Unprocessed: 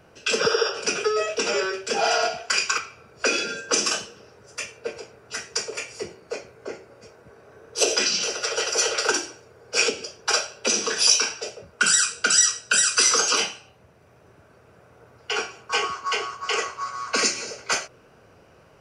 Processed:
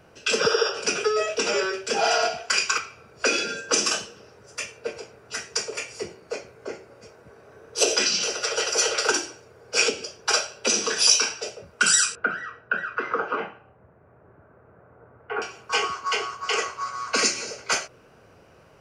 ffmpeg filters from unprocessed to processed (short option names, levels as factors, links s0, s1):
-filter_complex "[0:a]asettb=1/sr,asplit=3[s0][s1][s2];[s0]atrim=end=12.154[s3];[s1]atrim=start=12.15:end=15.42,asetpts=PTS-STARTPTS,afade=t=in:d=0.004:c=qsin,afade=t=out:st=3.266:d=0.004:c=qsin,lowpass=f=1700:w=0.5412,lowpass=f=1700:w=1.3066[s4];[s2]atrim=start=15.416[s5];[s3][s4]acrossfade=d=0.004:c1=hsin:c2=qsin[s6];[s6][s5]acrossfade=d=0.004:c1=qsin:c2=hsin"